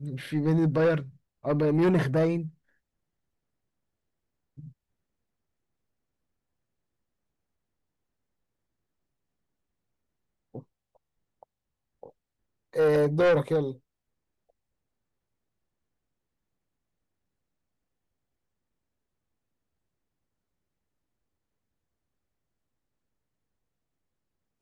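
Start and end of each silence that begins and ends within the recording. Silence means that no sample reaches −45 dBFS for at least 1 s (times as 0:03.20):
0:02.50–0:04.58
0:04.69–0:10.55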